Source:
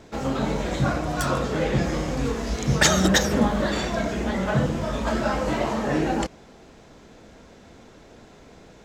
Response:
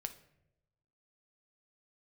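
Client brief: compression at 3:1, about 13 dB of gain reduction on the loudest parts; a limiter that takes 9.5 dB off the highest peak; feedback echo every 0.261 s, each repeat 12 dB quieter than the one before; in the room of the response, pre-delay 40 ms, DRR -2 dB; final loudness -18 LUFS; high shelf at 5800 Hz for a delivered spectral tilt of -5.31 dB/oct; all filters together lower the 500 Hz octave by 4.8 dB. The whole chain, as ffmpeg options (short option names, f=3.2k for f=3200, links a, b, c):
-filter_complex "[0:a]equalizer=f=500:t=o:g=-6,highshelf=f=5.8k:g=-8.5,acompressor=threshold=-34dB:ratio=3,alimiter=level_in=3dB:limit=-24dB:level=0:latency=1,volume=-3dB,aecho=1:1:261|522|783:0.251|0.0628|0.0157,asplit=2[a][b];[1:a]atrim=start_sample=2205,adelay=40[c];[b][c]afir=irnorm=-1:irlink=0,volume=4dB[d];[a][d]amix=inputs=2:normalize=0,volume=14dB"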